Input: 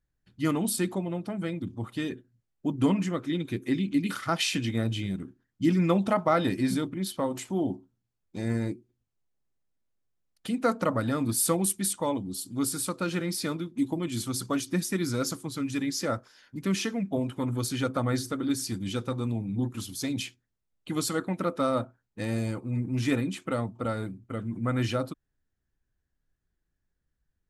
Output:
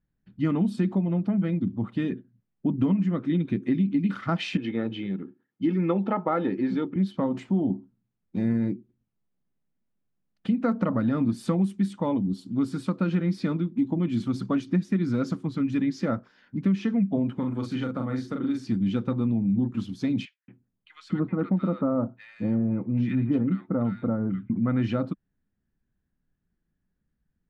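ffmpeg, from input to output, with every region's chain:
-filter_complex "[0:a]asettb=1/sr,asplit=3[a][b][c];[a]atrim=end=4.574[d];[b]atrim=start=4.57:end=6.96,asetpts=PTS-STARTPTS,afade=t=in:d=0.004:c=qsin,afade=t=out:st=2.386:d=0.004:c=qsin,highpass=250,lowpass=4.3k,aecho=1:1:2.3:0.44,atrim=end_sample=105399,adynamicequalizer=threshold=0.0112:dfrequency=1500:dqfactor=0.7:tfrequency=1500:tqfactor=0.7:attack=5:release=100:ratio=0.375:range=3:mode=cutabove:tftype=highshelf[e];[c]atrim=start=6.956[f];[d][e]acrossfade=d=0.004:c1=hsin:c2=qsin[g];[g][f]acrossfade=d=0.004:c1=qsin:c2=hsin,asettb=1/sr,asplit=3[h][i][j];[h]atrim=end=17.354[k];[i]atrim=start=17.35:end=18.67,asetpts=PTS-STARTPTS,afade=t=in:d=0.004:c=qsin,afade=t=out:st=1.316:d=0.004:c=qsin,asplit=2[l][m];[m]adelay=39,volume=-3.5dB[n];[l][n]amix=inputs=2:normalize=0,atrim=end_sample=58212,acrossover=split=350|6400[o][p][q];[o]acompressor=threshold=-37dB:ratio=4[r];[p]acompressor=threshold=-35dB:ratio=4[s];[q]acompressor=threshold=-39dB:ratio=4[t];[r][s][t]amix=inputs=3:normalize=0[u];[j]atrim=start=18.666[v];[k][u]acrossfade=d=0.004:c1=hsin:c2=qsin[w];[w][v]acrossfade=d=0.004:c1=qsin:c2=hsin,asettb=1/sr,asplit=3[x][y][z];[x]atrim=end=20.254[aa];[y]atrim=start=20.25:end=24.5,asetpts=PTS-STARTPTS,afade=t=in:d=0.004:c=qsin,afade=t=out:st=4.246:d=0.004:c=qsin,aemphasis=mode=reproduction:type=75kf,acrossover=split=1500[ab][ac];[ab]adelay=230[ad];[ad][ac]amix=inputs=2:normalize=0,atrim=end_sample=187425[ae];[z]atrim=start=24.496[af];[aa][ae]acrossfade=d=0.004:c1=hsin:c2=qsin[ag];[ag][af]acrossfade=d=0.004:c1=qsin:c2=hsin,lowpass=2.7k,equalizer=f=200:t=o:w=0.93:g=12.5,acompressor=threshold=-20dB:ratio=6"

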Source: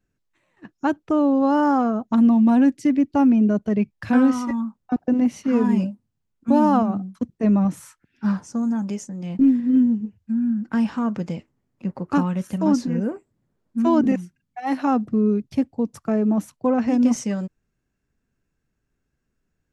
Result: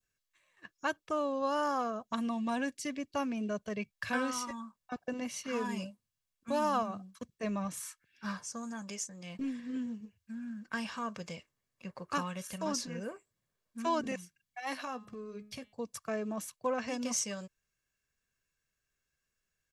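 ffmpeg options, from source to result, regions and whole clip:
-filter_complex "[0:a]asettb=1/sr,asplit=3[a][b][c];[a]atrim=end=14.824[d];[b]atrim=start=14.82:end=15.73,asetpts=PTS-STARTPTS,afade=t=in:d=0.004:c=qsin,afade=t=out:st=0.906:d=0.004:c=qsin,acompressor=threshold=-22dB:ratio=4:attack=3.2:release=140:knee=1:detection=peak,asplit=2[e][f];[f]adelay=16,volume=-12.5dB[g];[e][g]amix=inputs=2:normalize=0,atrim=end_sample=40131,bandreject=f=209.9:t=h:w=4,bandreject=f=419.8:t=h:w=4,bandreject=f=629.7:t=h:w=4,bandreject=f=839.6:t=h:w=4,bandreject=f=1.0495k:t=h:w=4,bandreject=f=1.2594k:t=h:w=4,bandreject=f=1.4693k:t=h:w=4,bandreject=f=1.6792k:t=h:w=4,bandreject=f=1.8891k:t=h:w=4,bandreject=f=2.099k:t=h:w=4,bandreject=f=2.3089k:t=h:w=4,bandreject=f=2.5188k:t=h:w=4,bandreject=f=2.7287k:t=h:w=4,bandreject=f=2.9386k:t=h:w=4,bandreject=f=3.1485k:t=h:w=4,bandreject=f=3.3584k:t=h:w=4,bandreject=f=3.5683k:t=h:w=4,bandreject=f=3.7782k:t=h:w=4,bandreject=f=3.9881k:t=h:w=4,bandreject=f=4.198k:t=h:w=4[h];[c]atrim=start=15.726[i];[d][h]acrossfade=d=0.004:c1=hsin:c2=qsin[j];[j][i]acrossfade=d=0.004:c1=qsin:c2=hsin,tiltshelf=f=970:g=-9.5,aecho=1:1:1.8:0.43,adynamicequalizer=threshold=0.00794:dfrequency=1900:dqfactor=1.4:tfrequency=1900:tqfactor=1.4:attack=5:release=100:ratio=0.375:range=2.5:mode=cutabove:tftype=bell,volume=-8dB"

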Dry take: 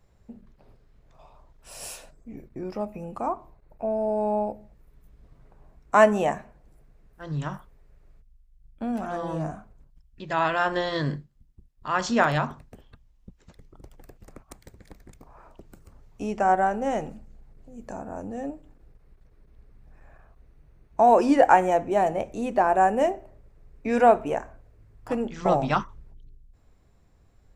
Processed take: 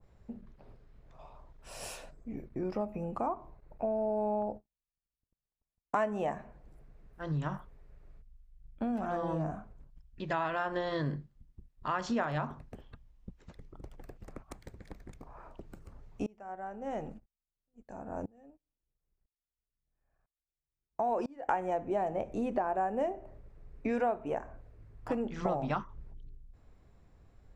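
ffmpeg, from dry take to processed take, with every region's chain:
-filter_complex "[0:a]asettb=1/sr,asplit=3[a][b][c];[a]atrim=end=4.424[d];[b]atrim=start=4.42:end=5.96,asetpts=PTS-STARTPTS,afade=t=in:d=0.004:c=qsin,afade=t=out:st=1.536:d=0.004:c=qsin,agate=range=-45dB:threshold=-45dB:ratio=16:release=100:detection=peak,equalizer=f=2.2k:w=3.6:g=-10[e];[c]atrim=start=5.956[f];[d][e]acrossfade=d=0.004:c1=hsin:c2=qsin[g];[g][f]acrossfade=d=0.004:c1=qsin:c2=hsin,asettb=1/sr,asplit=3[h][i][j];[h]atrim=end=16.264[k];[i]atrim=start=16.26:end=21.49,asetpts=PTS-STARTPTS,afade=t=in:d=0.004:c=qsin,afade=t=out:st=5.226:d=0.004:c=qsin,agate=range=-23dB:threshold=-42dB:ratio=16:release=100:detection=peak,aeval=exprs='val(0)*pow(10,-30*if(lt(mod(-1*n/s,1),2*abs(-1)/1000),1-mod(-1*n/s,1)/(2*abs(-1)/1000),(mod(-1*n/s,1)-2*abs(-1)/1000)/(1-2*abs(-1)/1000))/20)':c=same[l];[j]atrim=start=21.486[m];[k][l]acrossfade=d=0.004:c1=hsin:c2=qsin[n];[n][m]acrossfade=d=0.004:c1=qsin:c2=hsin,highshelf=f=5.3k:g=-10,acompressor=threshold=-30dB:ratio=4,adynamicequalizer=threshold=0.00447:dfrequency=1500:dqfactor=0.7:tfrequency=1500:tqfactor=0.7:attack=5:release=100:ratio=0.375:range=2:mode=cutabove:tftype=highshelf"

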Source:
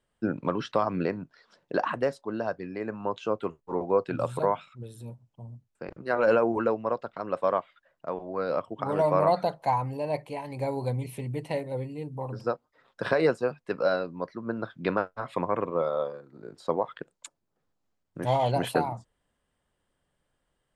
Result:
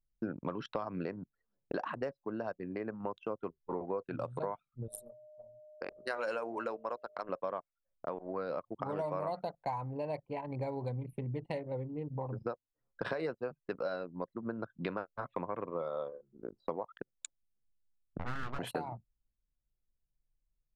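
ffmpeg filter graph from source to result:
-filter_complex "[0:a]asettb=1/sr,asplit=3[a][b][c];[a]atrim=end=4.884[d];[b]atrim=start=4.88:end=7.29,asetpts=PTS-STARTPTS,afade=t=in:d=0.004:c=qsin,afade=t=out:st=2.406:d=0.004:c=qsin,aemphasis=mode=production:type=riaa,bandreject=f=50:t=h:w=6,bandreject=f=100:t=h:w=6,bandreject=f=150:t=h:w=6,bandreject=f=200:t=h:w=6,bandreject=f=250:t=h:w=6,bandreject=f=300:t=h:w=6,bandreject=f=350:t=h:w=6,bandreject=f=400:t=h:w=6,bandreject=f=450:t=h:w=6,aeval=exprs='val(0)+0.00501*sin(2*PI*610*n/s)':c=same[e];[c]atrim=start=7.286[f];[d][e]acrossfade=d=0.004:c1=hsin:c2=qsin[g];[g][f]acrossfade=d=0.004:c1=qsin:c2=hsin,asettb=1/sr,asplit=3[h][i][j];[h]atrim=end=18.184[k];[i]atrim=start=18.18:end=18.59,asetpts=PTS-STARTPTS,afade=t=in:d=0.004:c=qsin,afade=t=out:st=0.406:d=0.004:c=qsin,highpass=200,lowpass=2.1k,aeval=exprs='abs(val(0))':c=same[l];[j]atrim=start=18.586[m];[k][l]acrossfade=d=0.004:c1=hsin:c2=qsin[n];[n][m]acrossfade=d=0.004:c1=qsin:c2=hsin,anlmdn=1.58,acompressor=threshold=-40dB:ratio=4,volume=3.5dB"

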